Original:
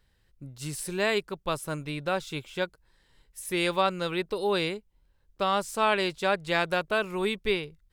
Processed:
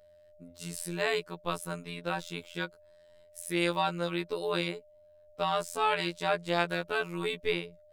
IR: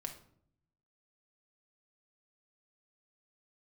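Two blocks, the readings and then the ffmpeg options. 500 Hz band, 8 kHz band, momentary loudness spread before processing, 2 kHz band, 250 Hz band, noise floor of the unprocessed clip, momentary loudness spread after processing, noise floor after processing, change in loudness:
-4.5 dB, -3.5 dB, 11 LU, -3.5 dB, -3.0 dB, -67 dBFS, 11 LU, -59 dBFS, -3.5 dB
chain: -af "aeval=exprs='val(0)+0.00158*sin(2*PI*600*n/s)':c=same,afftfilt=real='hypot(re,im)*cos(PI*b)':imag='0':win_size=2048:overlap=0.75"

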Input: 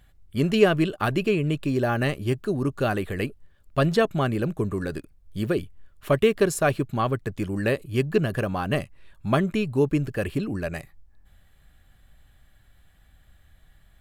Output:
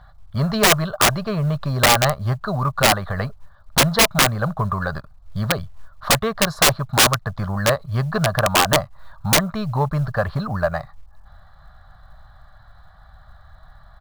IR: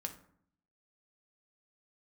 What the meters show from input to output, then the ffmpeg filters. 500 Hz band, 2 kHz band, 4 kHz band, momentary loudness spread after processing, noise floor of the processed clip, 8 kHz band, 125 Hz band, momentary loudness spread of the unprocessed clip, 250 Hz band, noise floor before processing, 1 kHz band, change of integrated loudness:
+0.5 dB, +9.0 dB, +15.5 dB, 12 LU, -49 dBFS, +19.0 dB, +5.0 dB, 10 LU, -0.5 dB, -58 dBFS, +9.5 dB, +6.0 dB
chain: -filter_complex "[0:a]firequalizer=gain_entry='entry(140,0);entry(220,-7);entry(310,-24);entry(620,7);entry(1200,12);entry(2600,-21);entry(4000,2);entry(7400,-23)':delay=0.05:min_phase=1,asplit=2[a][b];[b]acompressor=threshold=-32dB:ratio=16,volume=0dB[c];[a][c]amix=inputs=2:normalize=0,aeval=exprs='1.12*(cos(1*acos(clip(val(0)/1.12,-1,1)))-cos(1*PI/2))+0.0355*(cos(3*acos(clip(val(0)/1.12,-1,1)))-cos(3*PI/2))+0.0501*(cos(7*acos(clip(val(0)/1.12,-1,1)))-cos(7*PI/2))':c=same,acrusher=bits=9:mode=log:mix=0:aa=0.000001,aeval=exprs='(mod(5.31*val(0)+1,2)-1)/5.31':c=same,volume=8dB"

